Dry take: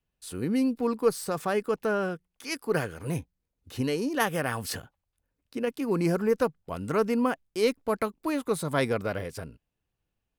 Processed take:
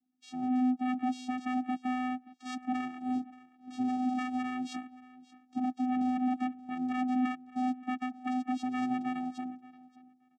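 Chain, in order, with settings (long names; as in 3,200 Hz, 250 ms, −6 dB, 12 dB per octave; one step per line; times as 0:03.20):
spectral magnitudes quantised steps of 30 dB
in parallel at −2.5 dB: brickwall limiter −22.5 dBFS, peak gain reduction 10.5 dB
on the sum: soft clipping −23.5 dBFS, distortion −10 dB
channel vocoder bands 4, square 253 Hz
low-shelf EQ 340 Hz −4 dB
on a send: repeating echo 577 ms, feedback 19%, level −20 dB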